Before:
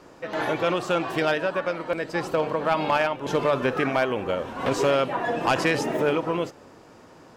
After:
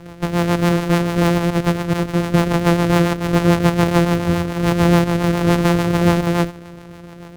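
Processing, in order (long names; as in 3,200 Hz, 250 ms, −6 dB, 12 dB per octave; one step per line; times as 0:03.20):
samples sorted by size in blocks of 256 samples
in parallel at +2.5 dB: brickwall limiter −25.5 dBFS, peak gain reduction 12 dB
on the sum: high-shelf EQ 2,600 Hz −8.5 dB
rotating-speaker cabinet horn 7 Hz
level +7.5 dB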